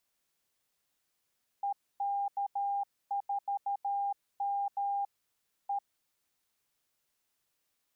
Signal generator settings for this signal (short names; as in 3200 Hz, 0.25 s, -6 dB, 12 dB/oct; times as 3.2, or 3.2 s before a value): Morse "EK4M E" 13 wpm 802 Hz -29.5 dBFS